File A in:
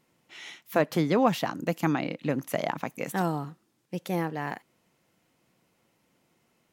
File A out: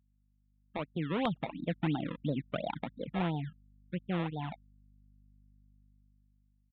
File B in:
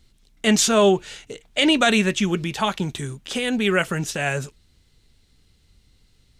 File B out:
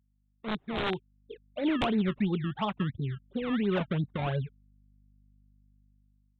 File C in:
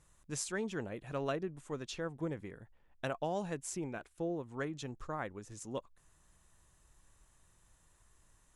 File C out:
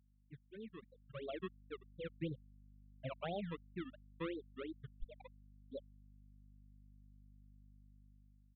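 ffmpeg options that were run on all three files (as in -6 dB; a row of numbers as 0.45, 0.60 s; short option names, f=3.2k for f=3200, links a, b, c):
-filter_complex "[0:a]afftfilt=real='re*gte(hypot(re,im),0.0794)':imag='im*gte(hypot(re,im),0.0794)':win_size=1024:overlap=0.75,lowpass=f=1.2k:w=0.5412,lowpass=f=1.2k:w=1.3066,equalizer=f=510:w=0.31:g=-11,asplit=2[a][b];[b]acompressor=threshold=-38dB:ratio=5,volume=-2.5dB[c];[a][c]amix=inputs=2:normalize=0,acrusher=samples=20:mix=1:aa=0.000001:lfo=1:lforange=20:lforate=2.9,aeval=exprs='val(0)+0.000794*(sin(2*PI*50*n/s)+sin(2*PI*2*50*n/s)/2+sin(2*PI*3*50*n/s)/3+sin(2*PI*4*50*n/s)/4+sin(2*PI*5*50*n/s)/5)':c=same,aresample=8000,aeval=exprs='(mod(7.94*val(0)+1,2)-1)/7.94':c=same,aresample=44100,dynaudnorm=f=450:g=5:m=10.5dB,asoftclip=type=tanh:threshold=-6.5dB,volume=-9dB"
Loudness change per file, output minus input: -7.0, -10.5, -7.5 LU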